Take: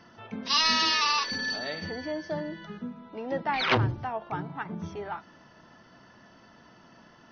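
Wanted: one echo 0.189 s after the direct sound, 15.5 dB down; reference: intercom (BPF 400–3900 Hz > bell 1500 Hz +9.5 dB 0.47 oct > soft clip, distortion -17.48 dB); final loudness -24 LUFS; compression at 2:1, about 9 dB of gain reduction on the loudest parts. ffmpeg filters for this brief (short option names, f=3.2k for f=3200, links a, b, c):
-af "acompressor=threshold=-36dB:ratio=2,highpass=400,lowpass=3.9k,equalizer=f=1.5k:t=o:w=0.47:g=9.5,aecho=1:1:189:0.168,asoftclip=threshold=-24.5dB,volume=12dB"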